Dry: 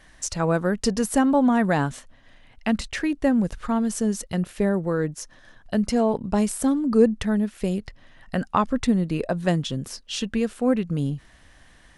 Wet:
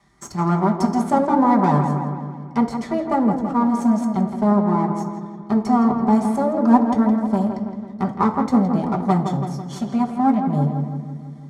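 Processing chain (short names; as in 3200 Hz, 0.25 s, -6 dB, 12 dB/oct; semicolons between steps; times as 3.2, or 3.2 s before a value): minimum comb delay 0.95 ms; reverb RT60 0.70 s, pre-delay 5 ms, DRR 1.5 dB; speed mistake 24 fps film run at 25 fps; BPF 110–6700 Hz; bell 2800 Hz -14.5 dB 1.2 oct; darkening echo 0.165 s, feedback 66%, low-pass 2900 Hz, level -7 dB; dynamic EQ 750 Hz, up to +6 dB, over -35 dBFS, Q 0.87; gain -1 dB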